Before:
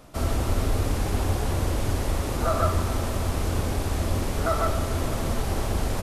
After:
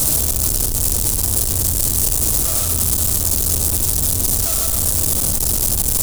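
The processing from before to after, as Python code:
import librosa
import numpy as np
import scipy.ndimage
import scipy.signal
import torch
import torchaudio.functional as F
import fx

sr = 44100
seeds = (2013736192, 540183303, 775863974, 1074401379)

y = np.sign(x) * np.sqrt(np.mean(np.square(x)))
y = fx.curve_eq(y, sr, hz=(110.0, 2000.0, 8500.0), db=(0, -12, 14))
y = fx.room_flutter(y, sr, wall_m=11.6, rt60_s=0.35)
y = y * 10.0 ** (2.5 / 20.0)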